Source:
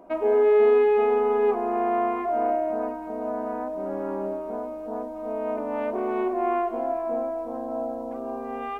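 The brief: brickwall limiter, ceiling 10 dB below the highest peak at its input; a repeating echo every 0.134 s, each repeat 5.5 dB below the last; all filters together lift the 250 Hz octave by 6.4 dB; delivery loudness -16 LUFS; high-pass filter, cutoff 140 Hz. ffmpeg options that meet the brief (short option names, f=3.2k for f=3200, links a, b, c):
-af "highpass=140,equalizer=f=250:t=o:g=9,alimiter=limit=-18dB:level=0:latency=1,aecho=1:1:134|268|402|536|670|804|938:0.531|0.281|0.149|0.079|0.0419|0.0222|0.0118,volume=8dB"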